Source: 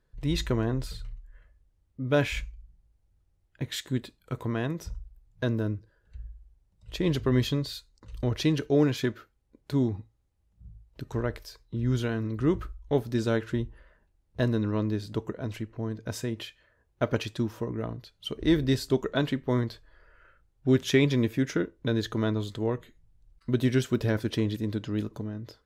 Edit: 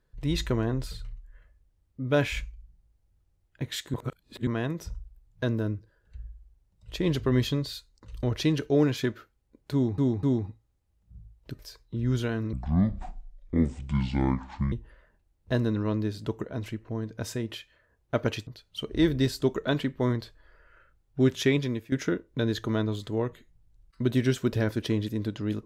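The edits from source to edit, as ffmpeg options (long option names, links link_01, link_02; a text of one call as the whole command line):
ffmpeg -i in.wav -filter_complex "[0:a]asplit=10[link_01][link_02][link_03][link_04][link_05][link_06][link_07][link_08][link_09][link_10];[link_01]atrim=end=3.942[link_11];[link_02]atrim=start=3.938:end=4.472,asetpts=PTS-STARTPTS,areverse[link_12];[link_03]atrim=start=4.468:end=9.982[link_13];[link_04]atrim=start=9.728:end=9.982[link_14];[link_05]atrim=start=9.728:end=11.092[link_15];[link_06]atrim=start=11.388:end=12.334[link_16];[link_07]atrim=start=12.33:end=13.6,asetpts=PTS-STARTPTS,asetrate=25578,aresample=44100[link_17];[link_08]atrim=start=13.596:end=17.352[link_18];[link_09]atrim=start=17.948:end=21.4,asetpts=PTS-STARTPTS,afade=type=out:start_time=2.722:duration=0.73:curve=qsin:silence=0.188365[link_19];[link_10]atrim=start=21.4,asetpts=PTS-STARTPTS,afade=type=in:duration=0.004:curve=hsin:silence=0.188365[link_20];[link_11][link_12]acrossfade=duration=0.004:curve1=hsin:curve2=hsin[link_21];[link_21][link_13]acrossfade=duration=0.004:curve1=hsin:curve2=hsin[link_22];[link_22][link_14]acrossfade=duration=0.004:curve1=hsin:curve2=hsin[link_23];[link_23][link_15]acrossfade=duration=0.004:curve1=hsin:curve2=hsin[link_24];[link_24][link_16]acrossfade=duration=0.004:curve1=hsin:curve2=hsin[link_25];[link_25][link_17]acrossfade=duration=0.004:curve1=hsin:curve2=hsin[link_26];[link_26][link_18]acrossfade=duration=0.004:curve1=hsin:curve2=hsin[link_27];[link_19][link_20]concat=n=2:v=0:a=1[link_28];[link_27][link_28]acrossfade=duration=0.004:curve1=hsin:curve2=hsin" out.wav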